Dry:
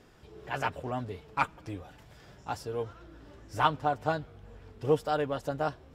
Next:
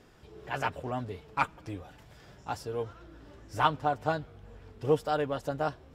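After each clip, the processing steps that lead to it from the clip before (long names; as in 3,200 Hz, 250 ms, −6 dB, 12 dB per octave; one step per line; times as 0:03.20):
no processing that can be heard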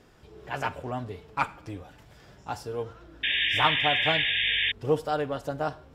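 four-comb reverb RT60 0.45 s, combs from 33 ms, DRR 15.5 dB
sound drawn into the spectrogram noise, 0:03.23–0:04.72, 1,600–3,700 Hz −27 dBFS
level +1 dB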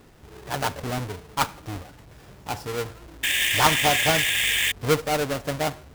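each half-wave held at its own peak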